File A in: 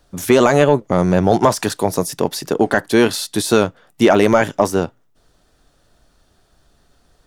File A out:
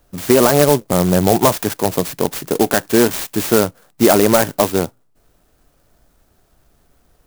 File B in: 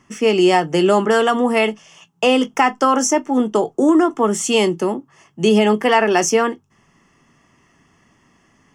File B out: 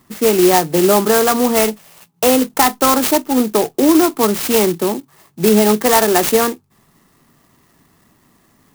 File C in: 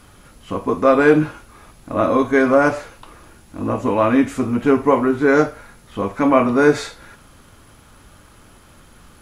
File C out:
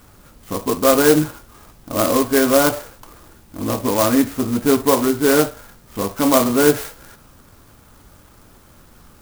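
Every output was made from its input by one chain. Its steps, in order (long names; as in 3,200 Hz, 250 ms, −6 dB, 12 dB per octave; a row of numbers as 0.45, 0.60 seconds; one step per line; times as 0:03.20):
converter with an unsteady clock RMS 0.091 ms
normalise the peak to −1.5 dBFS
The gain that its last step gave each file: +0.5, +2.0, −0.5 decibels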